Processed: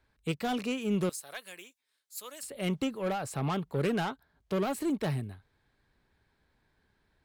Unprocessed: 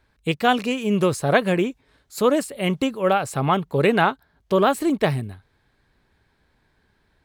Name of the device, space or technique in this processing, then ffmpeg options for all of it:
one-band saturation: -filter_complex "[0:a]asettb=1/sr,asplit=3[a][b][c];[a]atrim=end=1.094[d];[b]atrim=start=1.09:end=2.43,asetpts=PTS-STARTPTS,afade=t=in:d=0.004:c=qsin,afade=t=out:st=1.336:d=0.004:c=qsin,aderivative[e];[c]atrim=start=2.426[f];[d][e]acrossfade=d=0.004:c1=hsin:c2=qsin[g];[g][f]acrossfade=d=0.004:c1=qsin:c2=hsin,acrossover=split=280|4400[h][i][j];[i]asoftclip=type=tanh:threshold=-22dB[k];[h][k][j]amix=inputs=3:normalize=0,volume=-7.5dB"

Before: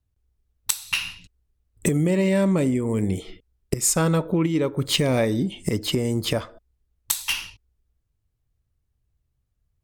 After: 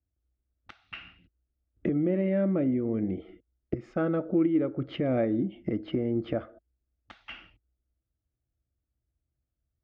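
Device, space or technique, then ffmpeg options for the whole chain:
bass cabinet: -af "highpass=63,equalizer=f=100:t=q:w=4:g=-10,equalizer=f=350:t=q:w=4:g=9,equalizer=f=600:t=q:w=4:g=-3,equalizer=f=950:t=q:w=4:g=-7,equalizer=f=1.8k:t=q:w=4:g=-7,lowpass=f=2.2k:w=0.5412,lowpass=f=2.2k:w=1.3066,equalizer=f=160:t=o:w=0.33:g=-9,equalizer=f=400:t=o:w=0.33:g=-11,equalizer=f=630:t=o:w=0.33:g=5,equalizer=f=1k:t=o:w=0.33:g=-12,equalizer=f=2.5k:t=o:w=0.33:g=-8,equalizer=f=4k:t=o:w=0.33:g=-6,equalizer=f=8k:t=o:w=0.33:g=-11,volume=-3.5dB"

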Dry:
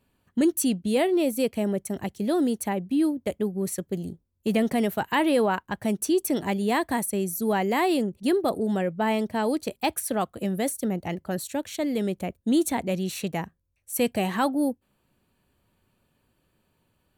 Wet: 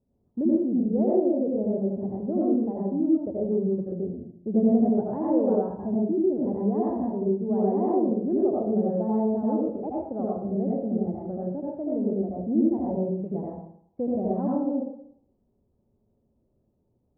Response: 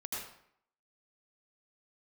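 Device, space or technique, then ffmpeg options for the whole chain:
next room: -filter_complex "[0:a]lowpass=f=660:w=0.5412,lowpass=f=660:w=1.3066[a];[1:a]atrim=start_sample=2205[b];[a][b]afir=irnorm=-1:irlink=0"

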